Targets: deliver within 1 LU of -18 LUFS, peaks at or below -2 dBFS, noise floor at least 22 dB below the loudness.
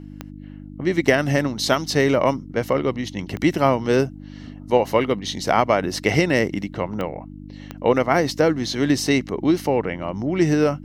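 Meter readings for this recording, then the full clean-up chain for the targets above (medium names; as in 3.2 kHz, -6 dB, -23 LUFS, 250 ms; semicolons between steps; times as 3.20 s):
clicks found 4; hum 50 Hz; highest harmonic 300 Hz; hum level -36 dBFS; loudness -21.0 LUFS; peak level -1.5 dBFS; loudness target -18.0 LUFS
-> de-click; de-hum 50 Hz, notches 6; trim +3 dB; peak limiter -2 dBFS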